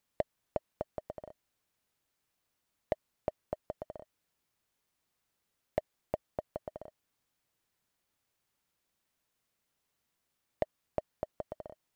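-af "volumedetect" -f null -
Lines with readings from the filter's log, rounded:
mean_volume: -45.3 dB
max_volume: -16.6 dB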